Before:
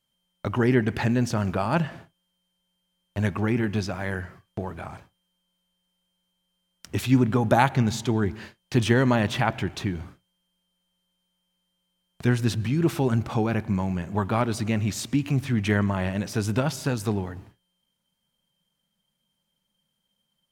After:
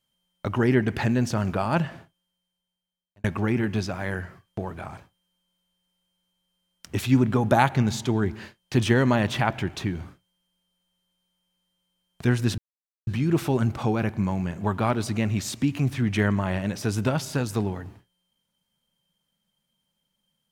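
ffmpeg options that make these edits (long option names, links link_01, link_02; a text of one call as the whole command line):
ffmpeg -i in.wav -filter_complex "[0:a]asplit=3[link_01][link_02][link_03];[link_01]atrim=end=3.24,asetpts=PTS-STARTPTS,afade=type=out:start_time=1.79:duration=1.45[link_04];[link_02]atrim=start=3.24:end=12.58,asetpts=PTS-STARTPTS,afade=type=in:duration=0.004:curve=hsin,afade=type=out:start_time=9.336:duration=0.004:curve=hsin,apad=pad_dur=0.49[link_05];[link_03]atrim=start=12.58,asetpts=PTS-STARTPTS,afade=type=in:duration=0.004:curve=hsin[link_06];[link_04][link_05][link_06]concat=n=3:v=0:a=1" out.wav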